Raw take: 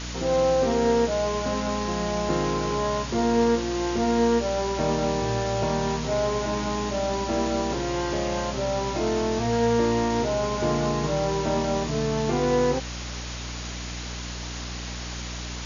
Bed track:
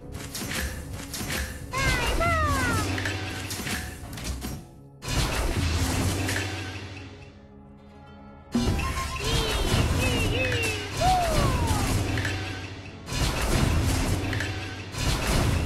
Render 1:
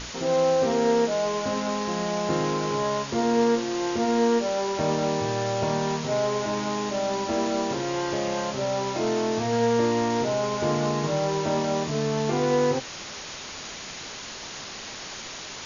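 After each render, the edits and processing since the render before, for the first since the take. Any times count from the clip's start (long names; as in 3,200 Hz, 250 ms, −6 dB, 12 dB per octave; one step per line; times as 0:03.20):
mains-hum notches 60/120/180/240/300/360 Hz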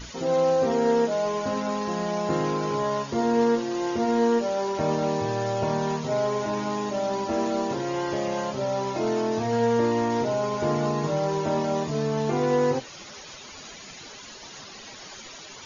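broadband denoise 12 dB, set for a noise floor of −38 dBFS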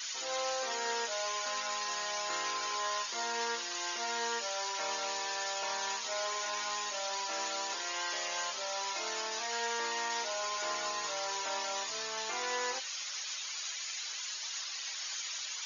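high-pass filter 1,400 Hz 12 dB per octave
high-shelf EQ 3,800 Hz +7.5 dB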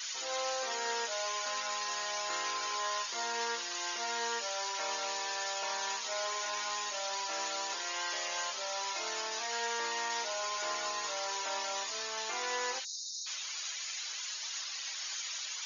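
low-shelf EQ 140 Hz −10.5 dB
0:12.85–0:13.27: time-frequency box erased 330–3,600 Hz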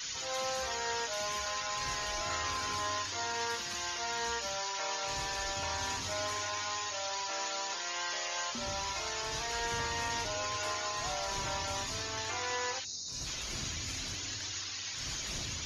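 mix in bed track −20 dB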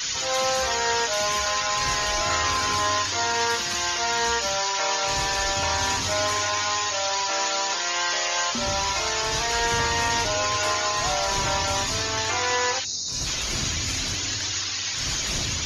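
level +11.5 dB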